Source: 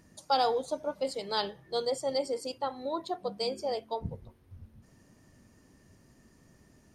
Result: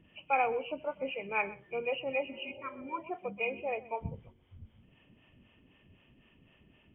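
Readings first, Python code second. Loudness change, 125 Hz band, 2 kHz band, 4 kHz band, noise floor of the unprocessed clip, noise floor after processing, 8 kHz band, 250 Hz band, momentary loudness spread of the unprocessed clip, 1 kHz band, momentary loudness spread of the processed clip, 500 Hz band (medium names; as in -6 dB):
-2.5 dB, -2.0 dB, +9.5 dB, -10.0 dB, -62 dBFS, -65 dBFS, under -30 dB, -3.5 dB, 9 LU, -2.5 dB, 11 LU, -4.0 dB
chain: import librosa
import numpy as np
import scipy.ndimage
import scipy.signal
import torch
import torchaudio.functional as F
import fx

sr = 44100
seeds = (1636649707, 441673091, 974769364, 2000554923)

y = fx.freq_compress(x, sr, knee_hz=2000.0, ratio=4.0)
y = fx.harmonic_tremolo(y, sr, hz=3.9, depth_pct=70, crossover_hz=460.0)
y = y + 10.0 ** (-18.5 / 20.0) * np.pad(y, (int(126 * sr / 1000.0), 0))[:len(y)]
y = fx.spec_repair(y, sr, seeds[0], start_s=2.31, length_s=0.64, low_hz=330.0, high_hz=900.0, source='before')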